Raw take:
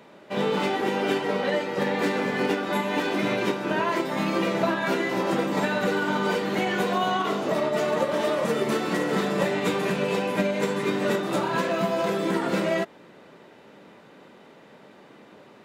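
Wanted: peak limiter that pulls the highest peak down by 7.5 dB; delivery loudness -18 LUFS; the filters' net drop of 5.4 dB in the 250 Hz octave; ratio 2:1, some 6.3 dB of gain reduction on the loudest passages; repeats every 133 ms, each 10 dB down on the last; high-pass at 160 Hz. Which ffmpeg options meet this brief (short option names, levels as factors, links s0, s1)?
-af "highpass=160,equalizer=f=250:t=o:g=-6.5,acompressor=threshold=0.0251:ratio=2,alimiter=level_in=1.06:limit=0.0631:level=0:latency=1,volume=0.944,aecho=1:1:133|266|399|532:0.316|0.101|0.0324|0.0104,volume=5.62"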